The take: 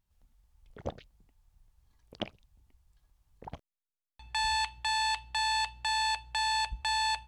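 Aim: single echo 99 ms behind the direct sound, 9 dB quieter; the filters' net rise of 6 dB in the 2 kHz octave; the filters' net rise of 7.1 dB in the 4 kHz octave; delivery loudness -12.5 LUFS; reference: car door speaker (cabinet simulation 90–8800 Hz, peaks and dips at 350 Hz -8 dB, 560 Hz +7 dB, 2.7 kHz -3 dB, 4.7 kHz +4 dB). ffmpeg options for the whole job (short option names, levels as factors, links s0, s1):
-af "highpass=90,equalizer=f=350:t=q:w=4:g=-8,equalizer=f=560:t=q:w=4:g=7,equalizer=f=2700:t=q:w=4:g=-3,equalizer=f=4700:t=q:w=4:g=4,lowpass=f=8800:w=0.5412,lowpass=f=8800:w=1.3066,equalizer=f=2000:t=o:g=7,equalizer=f=4000:t=o:g=4.5,aecho=1:1:99:0.355,volume=3.76"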